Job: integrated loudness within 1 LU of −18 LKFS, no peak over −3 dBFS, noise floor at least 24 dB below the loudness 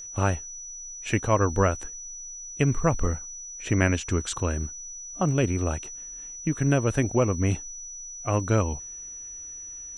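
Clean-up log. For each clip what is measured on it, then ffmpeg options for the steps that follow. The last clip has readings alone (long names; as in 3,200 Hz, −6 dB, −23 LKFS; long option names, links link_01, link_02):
interfering tone 5,900 Hz; level of the tone −37 dBFS; integrated loudness −27.5 LKFS; sample peak −7.0 dBFS; target loudness −18.0 LKFS
→ -af "bandreject=frequency=5900:width=30"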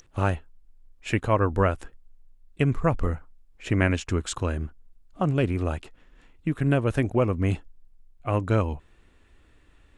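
interfering tone none found; integrated loudness −26.5 LKFS; sample peak −7.5 dBFS; target loudness −18.0 LKFS
→ -af "volume=8.5dB,alimiter=limit=-3dB:level=0:latency=1"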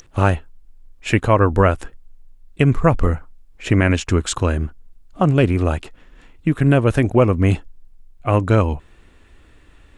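integrated loudness −18.5 LKFS; sample peak −3.0 dBFS; background noise floor −50 dBFS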